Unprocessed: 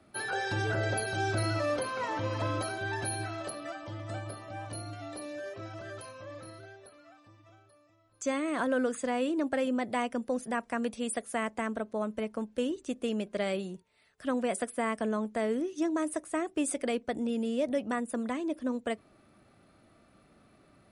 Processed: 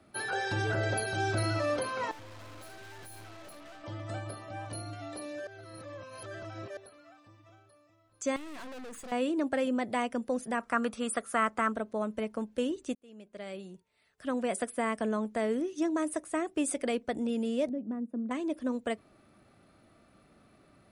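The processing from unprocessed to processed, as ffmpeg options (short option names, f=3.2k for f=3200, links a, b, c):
-filter_complex "[0:a]asettb=1/sr,asplit=3[a][b][c];[a]atrim=end=2.114[d];[b]atrim=start=2.11:end=3.84,asetpts=PTS-STARTPTS,afade=t=in:d=0.004:c=qsin,afade=t=out:st=1.726:d=0.004:c=qsin,aeval=exprs='(tanh(251*val(0)+0.8)-tanh(0.8))/251':c=same[e];[c]atrim=start=3.836[f];[d][e]acrossfade=d=0.004:c1=hsin:c2=qsin[g];[g][f]acrossfade=d=0.004:c1=qsin:c2=hsin,asettb=1/sr,asplit=3[h][i][j];[h]atrim=end=8.364[k];[i]atrim=start=8.36:end=9.12,asetpts=PTS-STARTPTS,afade=t=in:d=0.004:c=qsin,afade=t=out:st=0.756:d=0.004:c=qsin,aeval=exprs='(tanh(141*val(0)+0.65)-tanh(0.65))/141':c=same[l];[j]atrim=start=9.116[m];[k][l]acrossfade=d=0.004:c1=hsin:c2=qsin[n];[n][m]acrossfade=d=0.004:c1=qsin:c2=hsin,asettb=1/sr,asplit=3[o][p][q];[o]atrim=end=10.604[r];[p]atrim=start=10.6:end=11.72,asetpts=PTS-STARTPTS,afade=t=in:d=0.004:c=qsin,afade=t=out:st=1.116:d=0.004:c=qsin,equalizer=f=1.3k:t=o:w=0.49:g=14.5[s];[q]atrim=start=11.716[t];[r][s]acrossfade=d=0.004:c1=hsin:c2=qsin[u];[u][t]acrossfade=d=0.004:c1=qsin:c2=hsin,asettb=1/sr,asplit=3[v][w][x];[v]atrim=end=17.694[y];[w]atrim=start=17.69:end=18.31,asetpts=PTS-STARTPTS,afade=t=in:d=0.004:c=qsin,afade=t=out:st=0.616:d=0.004:c=qsin,bandpass=f=240:t=q:w=1.8[z];[x]atrim=start=18.306[aa];[y][z]acrossfade=d=0.004:c1=hsin:c2=qsin[ab];[ab][aa]acrossfade=d=0.004:c1=qsin:c2=hsin,asplit=4[ac][ad][ae][af];[ac]atrim=end=5.472[ag];[ad]atrim=start=5.468:end=6.772,asetpts=PTS-STARTPTS,areverse[ah];[ae]atrim=start=6.768:end=12.95,asetpts=PTS-STARTPTS,afade=t=out:st=6.178:d=0.004:c=hsin[ai];[af]atrim=start=12.95,asetpts=PTS-STARTPTS,afade=t=in:d=1.68[aj];[ag][ah]acrossfade=d=0.004:c1=hsin:c2=hsin[ak];[ai][aj]concat=n=2:v=0:a=1[al];[ak][al]acrossfade=d=0.004:c1=hsin:c2=hsin"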